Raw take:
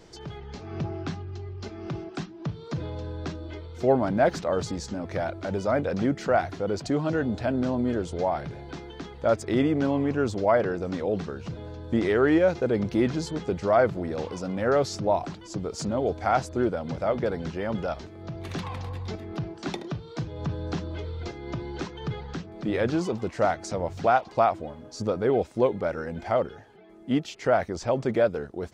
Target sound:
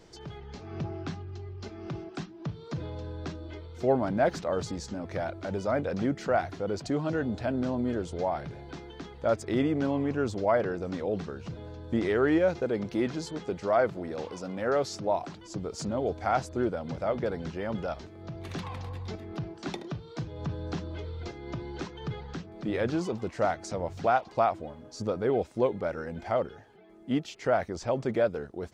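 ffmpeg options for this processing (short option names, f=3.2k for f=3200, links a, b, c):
-filter_complex "[0:a]asettb=1/sr,asplit=3[a][b][c];[a]atrim=end=12.644[d];[b]atrim=start=12.64:end=15.34,asetpts=PTS-STARTPTS,afade=t=in:d=0.004:c=qsin,afade=t=out:st=2.696:d=0.004:c=qsin,lowshelf=f=130:g=-9.5[e];[c]atrim=start=15.336[f];[d][e]acrossfade=d=0.004:c1=hsin:c2=qsin[g];[g][f]acrossfade=d=0.004:c1=qsin:c2=hsin,volume=-3.5dB"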